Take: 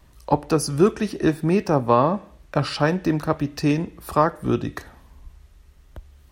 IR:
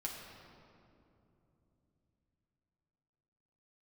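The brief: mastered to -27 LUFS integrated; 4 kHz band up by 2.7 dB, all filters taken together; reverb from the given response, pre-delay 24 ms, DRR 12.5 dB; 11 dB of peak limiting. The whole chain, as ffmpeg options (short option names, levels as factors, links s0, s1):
-filter_complex "[0:a]equalizer=f=4000:t=o:g=3.5,alimiter=limit=0.224:level=0:latency=1,asplit=2[s0][s1];[1:a]atrim=start_sample=2205,adelay=24[s2];[s1][s2]afir=irnorm=-1:irlink=0,volume=0.237[s3];[s0][s3]amix=inputs=2:normalize=0,volume=0.841"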